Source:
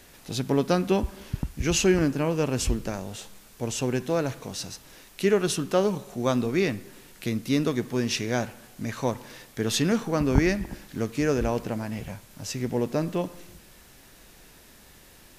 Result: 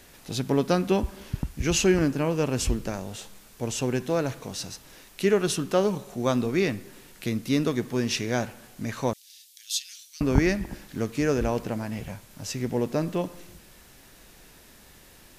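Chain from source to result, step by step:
0:09.13–0:10.21: inverse Chebyshev high-pass filter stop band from 580 Hz, stop band 80 dB

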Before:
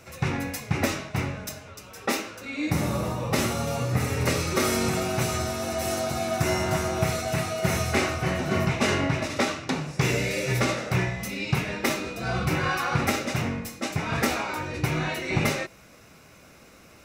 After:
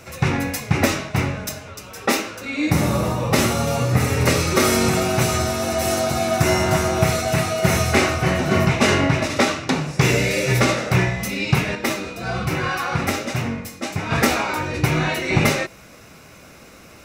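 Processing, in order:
0:11.75–0:14.11: flanger 1.2 Hz, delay 7.7 ms, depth 4 ms, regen +70%
level +7 dB

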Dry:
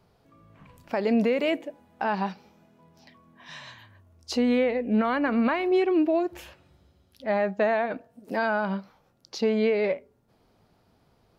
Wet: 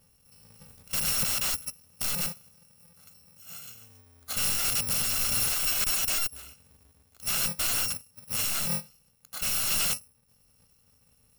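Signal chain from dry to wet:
samples in bit-reversed order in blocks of 128 samples
wrap-around overflow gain 22.5 dB

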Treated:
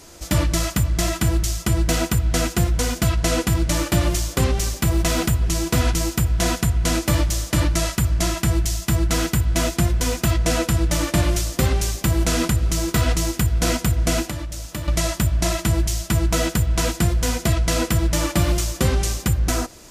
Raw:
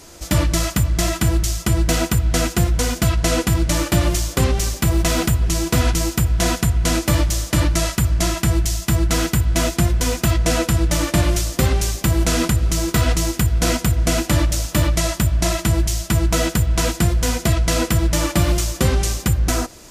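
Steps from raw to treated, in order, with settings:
0:14.24–0:14.88: downward compressor 2.5 to 1, threshold −29 dBFS, peak gain reduction 11.5 dB
level −2 dB

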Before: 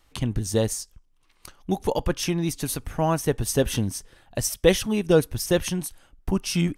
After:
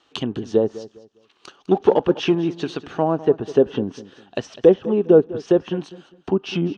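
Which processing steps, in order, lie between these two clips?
treble cut that deepens with the level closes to 780 Hz, closed at −18.5 dBFS
0:01.71–0:02.35: leveller curve on the samples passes 1
loudspeaker in its box 270–5,700 Hz, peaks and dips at 400 Hz +5 dB, 570 Hz −4 dB, 940 Hz −3 dB, 2,100 Hz −10 dB, 3,000 Hz +4 dB, 5,000 Hz −6 dB
on a send: repeating echo 202 ms, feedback 27%, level −17 dB
on the sum: level +7 dB

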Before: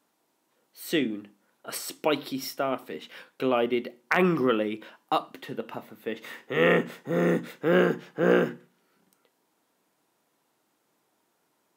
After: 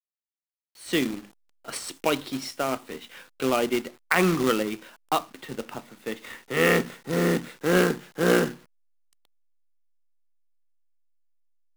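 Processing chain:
elliptic band-pass filter 120–10,000 Hz
parametric band 570 Hz −3 dB 1.3 octaves
log-companded quantiser 4 bits
in parallel at −9 dB: slack as between gear wheels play −31.5 dBFS

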